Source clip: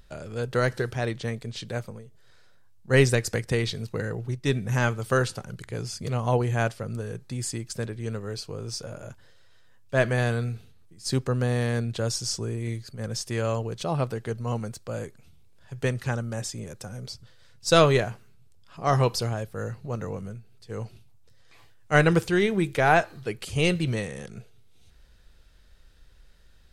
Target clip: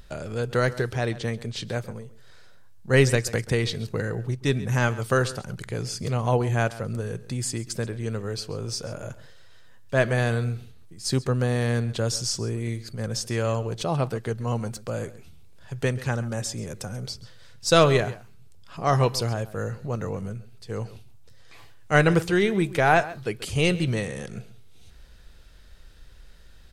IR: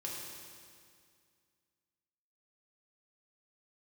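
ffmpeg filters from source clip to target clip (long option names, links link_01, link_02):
-filter_complex "[0:a]asplit=2[link_01][link_02];[link_02]acompressor=threshold=-39dB:ratio=6,volume=0dB[link_03];[link_01][link_03]amix=inputs=2:normalize=0,asplit=2[link_04][link_05];[link_05]adelay=134.1,volume=-17dB,highshelf=frequency=4000:gain=-3.02[link_06];[link_04][link_06]amix=inputs=2:normalize=0"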